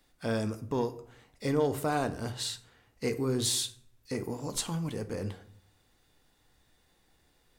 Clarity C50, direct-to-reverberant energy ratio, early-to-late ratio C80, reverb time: 15.0 dB, 9.5 dB, 19.0 dB, 0.60 s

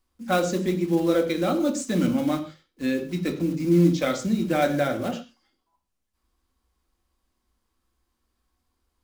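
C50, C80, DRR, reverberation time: 11.0 dB, 15.0 dB, 4.5 dB, non-exponential decay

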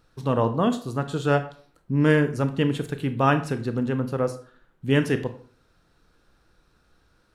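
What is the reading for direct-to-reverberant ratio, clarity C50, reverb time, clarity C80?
9.5 dB, 13.0 dB, 0.45 s, 17.0 dB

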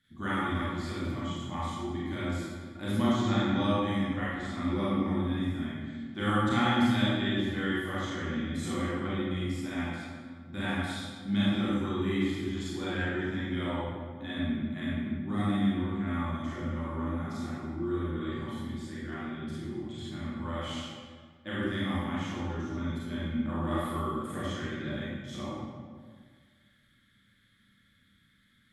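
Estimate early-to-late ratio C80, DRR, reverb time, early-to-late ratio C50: −0.5 dB, −9.0 dB, 1.7 s, −4.5 dB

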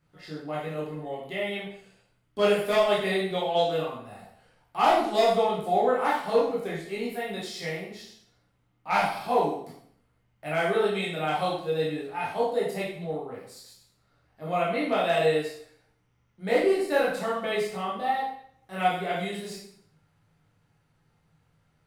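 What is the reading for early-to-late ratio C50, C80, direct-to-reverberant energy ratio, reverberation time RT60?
2.5 dB, 6.5 dB, −6.5 dB, 0.60 s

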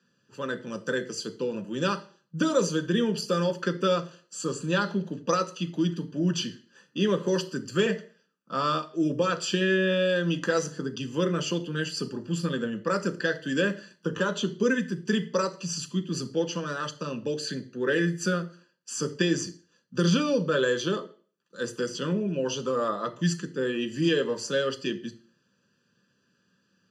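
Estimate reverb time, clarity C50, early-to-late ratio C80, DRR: 0.45 s, 16.5 dB, 20.5 dB, 6.0 dB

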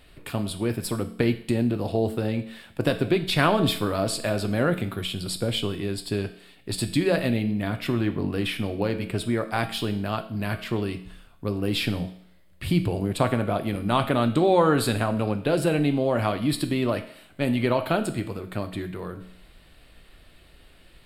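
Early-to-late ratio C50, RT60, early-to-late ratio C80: 12.5 dB, 0.65 s, 15.0 dB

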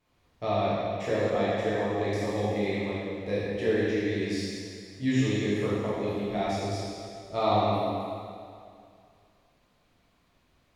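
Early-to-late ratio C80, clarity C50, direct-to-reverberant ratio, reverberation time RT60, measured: −2.0 dB, −4.0 dB, −9.5 dB, 2.3 s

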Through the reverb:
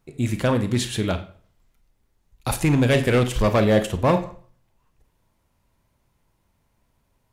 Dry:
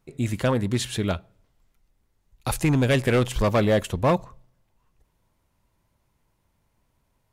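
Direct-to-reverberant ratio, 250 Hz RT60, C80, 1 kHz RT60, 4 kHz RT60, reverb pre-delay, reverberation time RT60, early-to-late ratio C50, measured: 8.0 dB, 0.45 s, 16.5 dB, 0.45 s, 0.40 s, 30 ms, 0.45 s, 12.0 dB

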